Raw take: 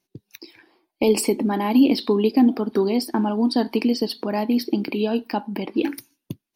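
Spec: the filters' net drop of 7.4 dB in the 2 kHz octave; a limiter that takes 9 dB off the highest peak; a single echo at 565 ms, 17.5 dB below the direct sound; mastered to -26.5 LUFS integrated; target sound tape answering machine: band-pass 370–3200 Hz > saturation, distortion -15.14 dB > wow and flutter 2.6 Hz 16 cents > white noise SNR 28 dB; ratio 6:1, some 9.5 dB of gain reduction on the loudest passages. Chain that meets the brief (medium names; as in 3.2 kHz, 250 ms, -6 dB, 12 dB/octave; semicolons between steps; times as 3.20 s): peaking EQ 2 kHz -8.5 dB; compression 6:1, threshold -22 dBFS; peak limiter -19.5 dBFS; band-pass 370–3200 Hz; delay 565 ms -17.5 dB; saturation -28.5 dBFS; wow and flutter 2.6 Hz 16 cents; white noise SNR 28 dB; trim +10 dB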